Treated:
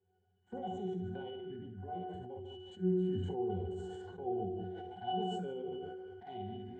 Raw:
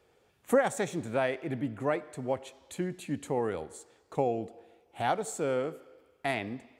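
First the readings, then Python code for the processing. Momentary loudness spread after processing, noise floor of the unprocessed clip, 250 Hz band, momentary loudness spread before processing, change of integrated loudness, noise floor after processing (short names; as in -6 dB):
12 LU, -67 dBFS, -4.0 dB, 11 LU, -7.5 dB, -76 dBFS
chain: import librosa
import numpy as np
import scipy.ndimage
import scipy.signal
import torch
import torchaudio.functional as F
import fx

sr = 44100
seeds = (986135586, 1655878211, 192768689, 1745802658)

y = fx.spec_steps(x, sr, hold_ms=50)
y = fx.env_flanger(y, sr, rest_ms=10.3, full_db=-29.0)
y = fx.brickwall_lowpass(y, sr, high_hz=8800.0)
y = fx.high_shelf(y, sr, hz=4800.0, db=8.5)
y = fx.octave_resonator(y, sr, note='F#', decay_s=0.39)
y = fx.echo_multitap(y, sr, ms=(51, 64, 67, 144, 200, 203), db=(-7.5, -11.0, -10.5, -12.0, -15.0, -17.5))
y = fx.sustainer(y, sr, db_per_s=21.0)
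y = F.gain(torch.from_numpy(y), 8.5).numpy()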